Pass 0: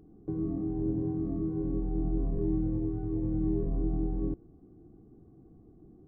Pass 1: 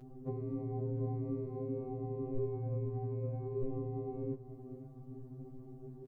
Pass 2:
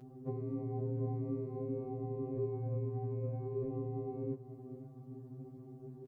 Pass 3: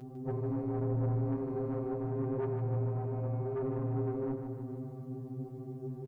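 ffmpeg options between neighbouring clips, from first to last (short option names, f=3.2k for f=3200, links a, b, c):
-af "acompressor=threshold=-40dB:ratio=2,aecho=1:1:512:0.2,afftfilt=real='re*2.45*eq(mod(b,6),0)':imag='im*2.45*eq(mod(b,6),0)':win_size=2048:overlap=0.75,volume=9dB"
-af "highpass=46"
-filter_complex "[0:a]asoftclip=type=tanh:threshold=-36.5dB,asplit=2[a][b];[b]aecho=0:1:153|306|459|612|765|918|1071|1224:0.447|0.268|0.161|0.0965|0.0579|0.0347|0.0208|0.0125[c];[a][c]amix=inputs=2:normalize=0,volume=7dB"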